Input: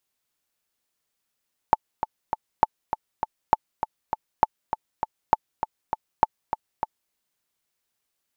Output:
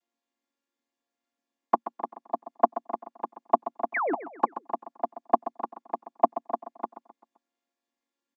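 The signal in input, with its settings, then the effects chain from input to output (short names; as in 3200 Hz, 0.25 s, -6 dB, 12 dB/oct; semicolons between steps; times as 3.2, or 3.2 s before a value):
metronome 200 bpm, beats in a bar 3, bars 6, 876 Hz, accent 9.5 dB -2 dBFS
chord vocoder minor triad, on A#3; painted sound fall, 3.94–4.14, 250–2500 Hz -27 dBFS; feedback echo 0.13 s, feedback 44%, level -13 dB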